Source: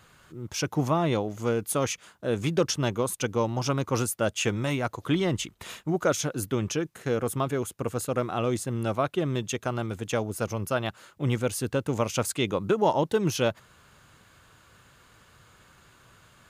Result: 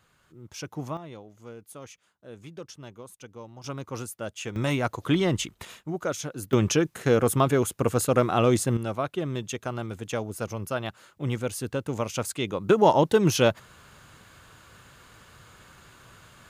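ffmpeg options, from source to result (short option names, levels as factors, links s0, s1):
-af "asetnsamples=n=441:p=0,asendcmd='0.97 volume volume -17dB;3.64 volume volume -8.5dB;4.56 volume volume 2dB;5.65 volume volume -5dB;6.53 volume volume 6dB;8.77 volume volume -2.5dB;12.69 volume volume 4.5dB',volume=0.376"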